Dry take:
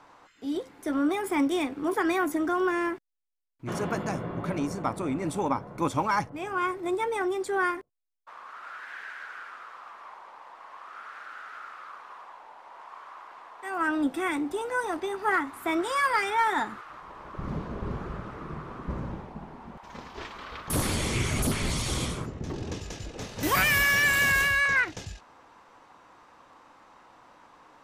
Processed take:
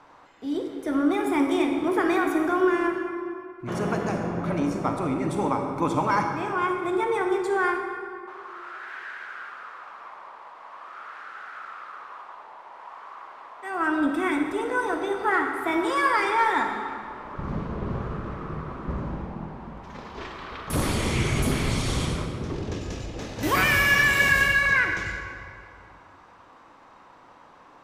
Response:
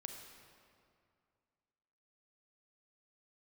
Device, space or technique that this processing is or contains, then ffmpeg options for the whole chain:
swimming-pool hall: -filter_complex "[1:a]atrim=start_sample=2205[s0];[0:a][s0]afir=irnorm=-1:irlink=0,highshelf=f=5500:g=-7,volume=2.24"

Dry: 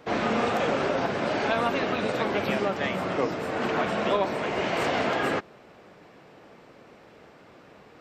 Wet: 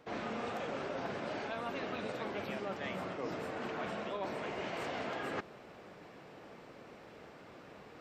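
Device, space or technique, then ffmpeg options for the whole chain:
compression on the reversed sound: -af "areverse,acompressor=threshold=0.0178:ratio=6,areverse,volume=0.794"

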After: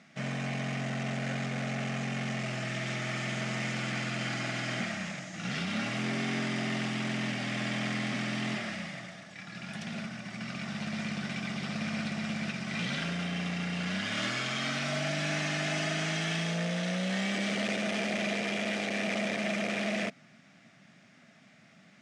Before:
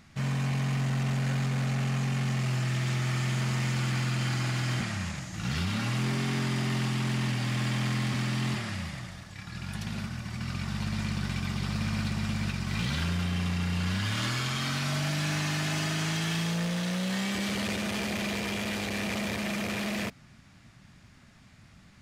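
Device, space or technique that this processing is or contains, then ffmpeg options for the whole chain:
television speaker: -af "highpass=f=170:w=0.5412,highpass=f=170:w=1.3066,equalizer=f=360:t=q:w=4:g=-3,equalizer=f=650:t=q:w=4:g=7,equalizer=f=980:t=q:w=4:g=-8,equalizer=f=2100:t=q:w=4:g=3,equalizer=f=4400:t=q:w=4:g=-5,equalizer=f=7200:t=q:w=4:g=-4,lowpass=f=8100:w=0.5412,lowpass=f=8100:w=1.3066"

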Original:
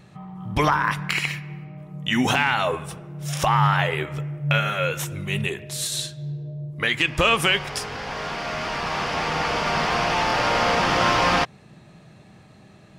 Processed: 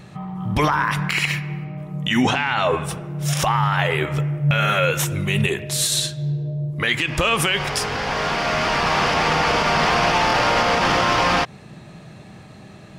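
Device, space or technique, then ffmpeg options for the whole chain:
stacked limiters: -filter_complex "[0:a]alimiter=limit=0.237:level=0:latency=1:release=80,alimiter=limit=0.141:level=0:latency=1:release=47,asettb=1/sr,asplit=3[s0][s1][s2];[s0]atrim=end=2.224[s3];[s1]atrim=start=2.22:end=2.83,asetpts=PTS-STARTPTS,afade=t=in:d=0.004:c=qsin,afade=t=out:st=0.606:d=0.004:c=qsin,lowpass=5800[s4];[s2]atrim=start=2.826[s5];[s3][s4]acrossfade=d=0.004:c1=hsin:c2=qsin[s6];[s6][s5]acrossfade=d=0.004:c1=qsin:c2=hsin,volume=2.37"

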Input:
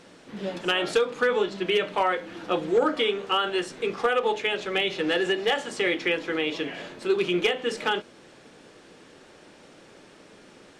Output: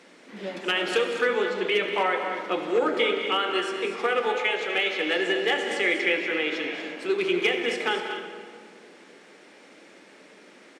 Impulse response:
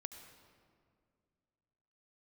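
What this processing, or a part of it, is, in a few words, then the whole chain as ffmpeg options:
stadium PA: -filter_complex "[0:a]asettb=1/sr,asplit=3[s0][s1][s2];[s0]atrim=end=4.424[s3];[s1]atrim=start=4.42:end=5.16,asetpts=PTS-STARTPTS,afade=t=in:d=0.004:c=qsin,afade=t=out:st=0.736:d=0.004:c=qsin,highpass=240[s4];[s2]atrim=start=5.156[s5];[s3][s4]acrossfade=d=0.004:c1=hsin:c2=qsin[s6];[s6][s5]acrossfade=d=0.004:c1=qsin:c2=hsin,highpass=f=200:w=0.5412,highpass=f=200:w=1.3066,equalizer=f=2100:t=o:w=0.44:g=7,aecho=1:1:192.4|239.1:0.251|0.316[s7];[1:a]atrim=start_sample=2205[s8];[s7][s8]afir=irnorm=-1:irlink=0,volume=1.33"

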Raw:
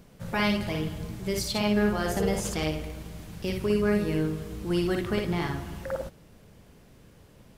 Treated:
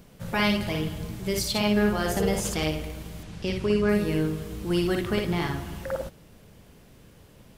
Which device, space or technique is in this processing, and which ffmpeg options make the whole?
presence and air boost: -filter_complex "[0:a]equalizer=f=3100:t=o:w=0.77:g=2,highshelf=f=10000:g=4.5,asettb=1/sr,asplit=3[s0][s1][s2];[s0]atrim=end=3.234[s3];[s1]atrim=start=3.23:end=3.89,asetpts=PTS-STARTPTS,afade=t=in:d=0.004:c=qsin,afade=t=out:st=0.656:d=0.004:c=qsin,lowpass=7100[s4];[s2]atrim=start=3.886[s5];[s3][s4]acrossfade=d=0.004:c1=hsin:c2=qsin[s6];[s6][s5]acrossfade=d=0.004:c1=qsin:c2=hsin,volume=1.19"

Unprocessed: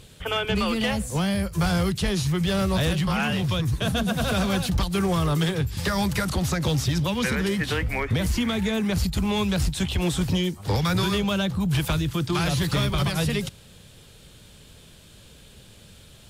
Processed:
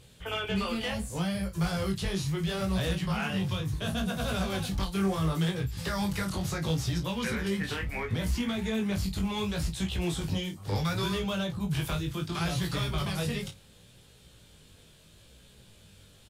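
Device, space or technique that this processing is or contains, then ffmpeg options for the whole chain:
double-tracked vocal: -filter_complex "[0:a]asplit=2[s0][s1];[s1]adelay=31,volume=0.355[s2];[s0][s2]amix=inputs=2:normalize=0,flanger=delay=16.5:depth=4.5:speed=0.71,volume=0.596"

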